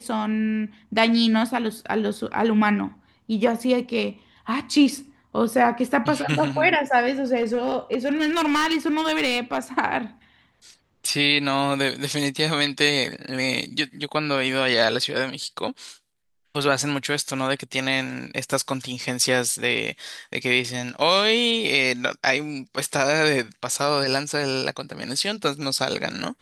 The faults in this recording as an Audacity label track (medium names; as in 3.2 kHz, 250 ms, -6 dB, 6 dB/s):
7.360000	9.580000	clipped -17 dBFS